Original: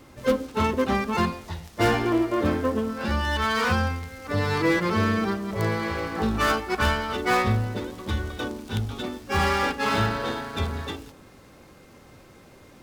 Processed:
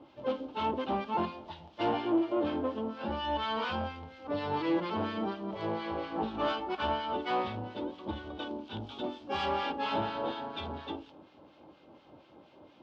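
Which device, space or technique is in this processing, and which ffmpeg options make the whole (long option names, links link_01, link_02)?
guitar amplifier with harmonic tremolo: -filter_complex "[0:a]asettb=1/sr,asplit=3[link_01][link_02][link_03];[link_01]atrim=end=8.804[link_04];[link_02]atrim=start=8.8:end=9.46,asetpts=PTS-STARTPTS,afade=type=in:duration=0.004:curve=qsin,afade=type=out:start_time=0.656:duration=0.004:curve=qsin,highshelf=frequency=5900:gain=11[link_05];[link_03]atrim=start=9.456[link_06];[link_04][link_05]acrossfade=duration=0.004:curve1=hsin:curve2=qsin[link_07];[link_07][link_06]acrossfade=duration=0.004:curve1=qsin:curve2=hsin,acrossover=split=1300[link_08][link_09];[link_08]aeval=exprs='val(0)*(1-0.7/2+0.7/2*cos(2*PI*4.2*n/s))':channel_layout=same[link_10];[link_09]aeval=exprs='val(0)*(1-0.7/2-0.7/2*cos(2*PI*4.2*n/s))':channel_layout=same[link_11];[link_10][link_11]amix=inputs=2:normalize=0,asoftclip=type=tanh:threshold=-22dB,highpass=89,equalizer=frequency=110:width_type=q:width=4:gain=-5,equalizer=frequency=310:width_type=q:width=4:gain=10,equalizer=frequency=610:width_type=q:width=4:gain=9,equalizer=frequency=880:width_type=q:width=4:gain=10,equalizer=frequency=1900:width_type=q:width=4:gain=-7,equalizer=frequency=3100:width_type=q:width=4:gain=8,lowpass=frequency=4300:width=0.5412,lowpass=frequency=4300:width=1.3066,volume=-7dB"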